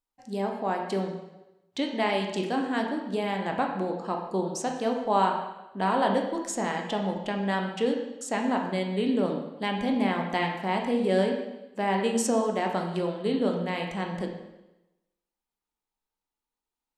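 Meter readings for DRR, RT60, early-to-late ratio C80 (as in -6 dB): 1.5 dB, 1.0 s, 7.5 dB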